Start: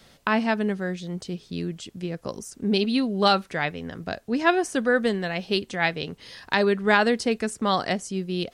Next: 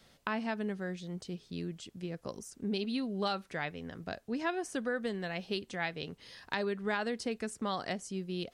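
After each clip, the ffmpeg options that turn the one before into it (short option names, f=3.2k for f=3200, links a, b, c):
-af "acompressor=threshold=-23dB:ratio=2.5,volume=-8.5dB"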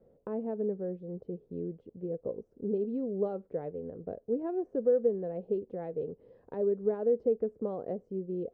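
-af "lowpass=f=480:t=q:w=5.2,volume=-2.5dB"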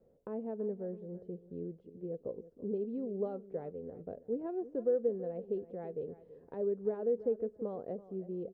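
-af "aecho=1:1:330|660:0.158|0.0365,volume=-4.5dB"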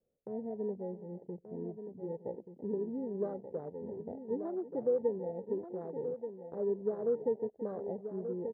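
-af "afwtdn=0.00891,aecho=1:1:1181:0.355"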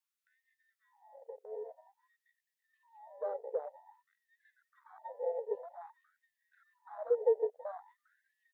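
-af "afftfilt=real='re*gte(b*sr/1024,390*pow(1600/390,0.5+0.5*sin(2*PI*0.51*pts/sr)))':imag='im*gte(b*sr/1024,390*pow(1600/390,0.5+0.5*sin(2*PI*0.51*pts/sr)))':win_size=1024:overlap=0.75,volume=4.5dB"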